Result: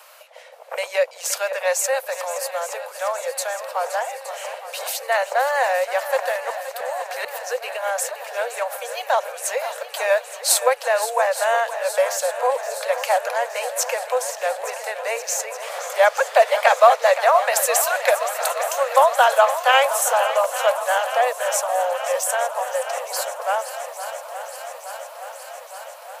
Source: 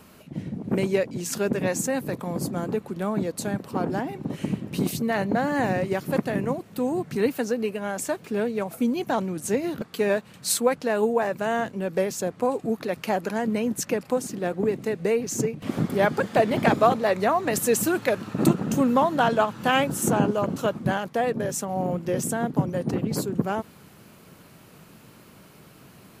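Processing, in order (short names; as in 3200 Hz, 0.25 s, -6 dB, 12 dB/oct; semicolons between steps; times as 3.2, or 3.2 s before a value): steep high-pass 510 Hz 96 dB/oct; 6.32–8.34 auto swell 0.112 s; swung echo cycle 0.868 s, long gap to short 1.5:1, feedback 70%, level -12.5 dB; gain +7 dB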